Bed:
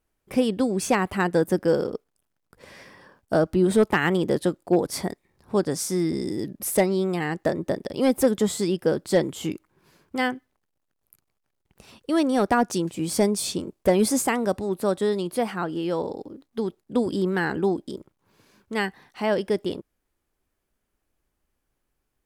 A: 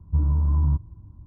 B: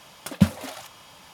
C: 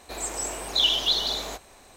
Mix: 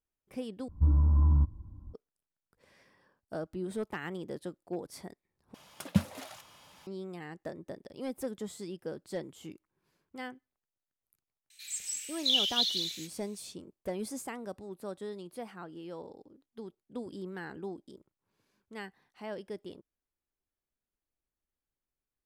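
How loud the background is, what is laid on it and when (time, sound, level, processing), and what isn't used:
bed -17 dB
0.68 s: replace with A -3 dB + comb 3.7 ms, depth 43%
5.54 s: replace with B -8.5 dB
11.50 s: add C -5 dB + inverse Chebyshev high-pass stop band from 890 Hz, stop band 50 dB

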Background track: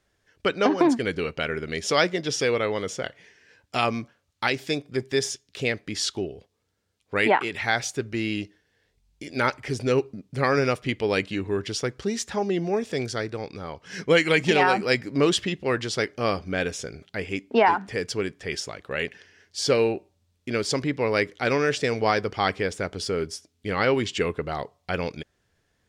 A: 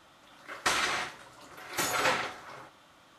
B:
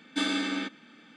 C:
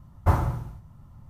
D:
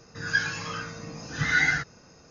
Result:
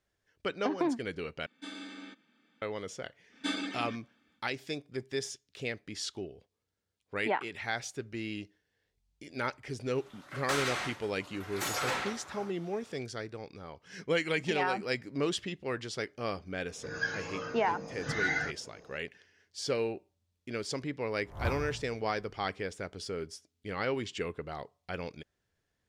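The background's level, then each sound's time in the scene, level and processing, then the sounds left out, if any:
background track -10.5 dB
1.46 s: replace with B -15.5 dB
3.28 s: add B -4.5 dB, fades 0.10 s + reverb removal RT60 1.7 s
9.83 s: add A -2 dB, fades 0.05 s + saturation -25 dBFS
16.68 s: add D -11 dB + peaking EQ 500 Hz +13.5 dB 1.8 oct
21.18 s: add C -14 dB + reverse spectral sustain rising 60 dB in 0.40 s

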